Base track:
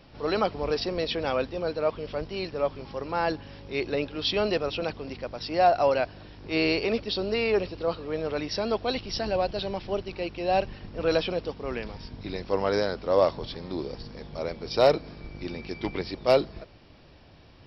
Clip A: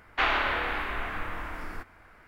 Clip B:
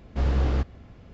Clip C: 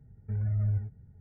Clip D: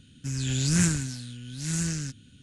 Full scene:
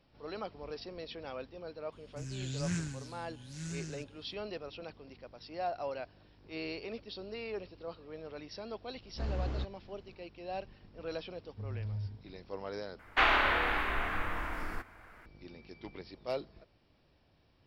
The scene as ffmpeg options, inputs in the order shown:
-filter_complex "[0:a]volume=-15.5dB[a];[4:a]acrossover=split=6400[b][c];[c]acompressor=threshold=-49dB:ratio=4:attack=1:release=60[d];[b][d]amix=inputs=2:normalize=0[e];[a]asplit=2[f][g];[f]atrim=end=12.994[h];[1:a]atrim=end=2.27,asetpts=PTS-STARTPTS,volume=-0.5dB[i];[g]atrim=start=15.256[j];[e]atrim=end=2.42,asetpts=PTS-STARTPTS,volume=-11.5dB,afade=t=in:d=0.004:c=hsin,afade=t=out:st=2.416:d=0.004:c=hsin,adelay=1920[k];[2:a]atrim=end=1.13,asetpts=PTS-STARTPTS,volume=-12dB,afade=t=in:d=0.004:c=hsin,afade=t=out:st=1.126:d=0.004:c=hsin,adelay=9020[l];[3:a]atrim=end=1.2,asetpts=PTS-STARTPTS,volume=-10dB,afade=t=in:d=0.004:c=hsin,afade=t=out:st=1.196:d=0.004:c=hsin,adelay=11290[m];[h][i]acrossfade=d=0.004:c1=hsin:c2=hsin[n];[n][j]acrossfade=d=0.004:c1=hsin:c2=hsin[o];[o][k][l][m]amix=inputs=4:normalize=0"

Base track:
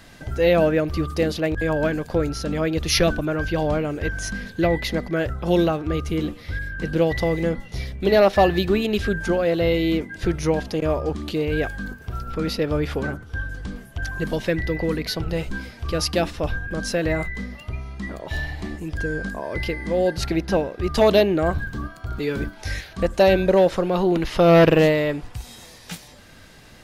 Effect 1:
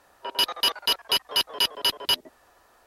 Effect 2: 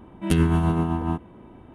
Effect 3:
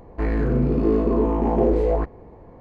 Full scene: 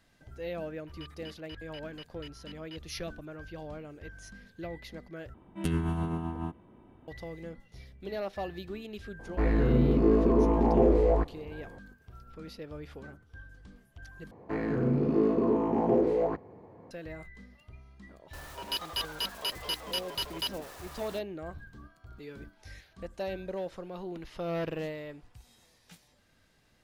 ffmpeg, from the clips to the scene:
-filter_complex "[1:a]asplit=2[a][b];[3:a]asplit=2[c][d];[0:a]volume=-20dB[e];[a]bandpass=f=2k:t=q:w=3:csg=0[f];[c]aresample=32000,aresample=44100[g];[d]highpass=f=96:w=0.5412,highpass=f=96:w=1.3066[h];[b]aeval=exprs='val(0)+0.5*0.0266*sgn(val(0))':c=same[i];[e]asplit=3[j][k][l];[j]atrim=end=5.344[m];[2:a]atrim=end=1.74,asetpts=PTS-STARTPTS,volume=-10dB[n];[k]atrim=start=7.076:end=14.314[o];[h]atrim=end=2.6,asetpts=PTS-STARTPTS,volume=-5.5dB[p];[l]atrim=start=16.906[q];[f]atrim=end=2.86,asetpts=PTS-STARTPTS,volume=-17.5dB,afade=t=in:d=0.004:c=hsin,afade=t=out:st=2.856:d=0.004:c=hsin,adelay=620[r];[g]atrim=end=2.6,asetpts=PTS-STARTPTS,volume=-3.5dB,afade=t=in:d=0.004:c=hsin,afade=t=out:st=2.596:d=0.004:c=hsin,adelay=9190[s];[i]atrim=end=2.86,asetpts=PTS-STARTPTS,volume=-11.5dB,afade=t=in:d=0.004:c=hsin,afade=t=out:st=2.856:d=0.004:c=hsin,adelay=18330[t];[m][n]acrossfade=d=0.004:c1=hsin:c2=hsin[u];[u][o]acrossfade=d=0.004:c1=hsin:c2=hsin[v];[v][p]acrossfade=d=0.004:c1=hsin:c2=hsin[w];[w][q]acrossfade=d=0.004:c1=hsin:c2=hsin[x];[x][r][s][t]amix=inputs=4:normalize=0"

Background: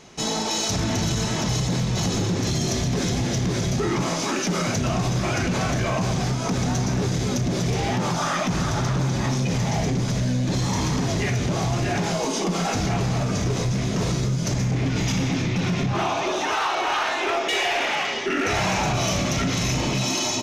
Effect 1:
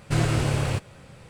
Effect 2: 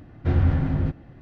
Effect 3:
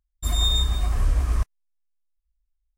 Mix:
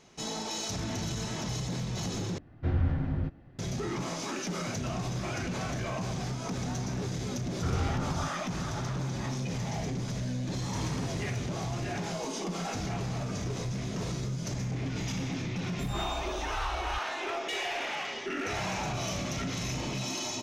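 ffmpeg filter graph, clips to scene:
-filter_complex "[2:a]asplit=2[a][b];[0:a]volume=-10.5dB[c];[b]lowpass=f=1.3k:t=q:w=8.1[d];[c]asplit=2[e][f];[e]atrim=end=2.384[g];[a]atrim=end=1.21,asetpts=PTS-STARTPTS,volume=-7.5dB[h];[f]atrim=start=3.586[i];[d]atrim=end=1.21,asetpts=PTS-STARTPTS,volume=-12dB,afade=t=in:d=0.004:c=hsin,afade=t=out:st=1.206:d=0.004:c=hsin,adelay=7370[j];[1:a]atrim=end=1.29,asetpts=PTS-STARTPTS,volume=-17.5dB,afade=t=in:d=0.004:c=hsin,afade=t=out:st=1.286:d=0.004:c=hsin,adelay=10630[k];[3:a]atrim=end=2.77,asetpts=PTS-STARTPTS,volume=-17dB,afade=t=in:d=0.004:c=hsin,afade=t=out:st=2.766:d=0.004:c=hsin,adelay=686196S[l];[g][h]acrossfade=d=0.004:c1=hsin:c2=hsin[m];[m][i]acrossfade=d=0.004:c1=hsin:c2=hsin[n];[n][j][k][l]amix=inputs=4:normalize=0"

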